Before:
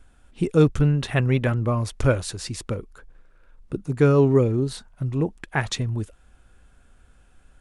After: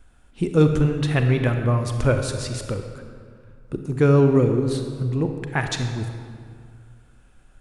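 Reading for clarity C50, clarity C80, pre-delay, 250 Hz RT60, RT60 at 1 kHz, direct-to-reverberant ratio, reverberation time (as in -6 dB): 6.0 dB, 7.5 dB, 32 ms, 2.3 s, 2.1 s, 5.5 dB, 2.1 s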